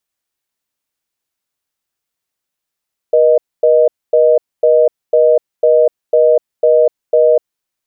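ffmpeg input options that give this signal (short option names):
-f lavfi -i "aevalsrc='0.355*(sin(2*PI*480*t)+sin(2*PI*620*t))*clip(min(mod(t,0.5),0.25-mod(t,0.5))/0.005,0,1)':d=4.35:s=44100"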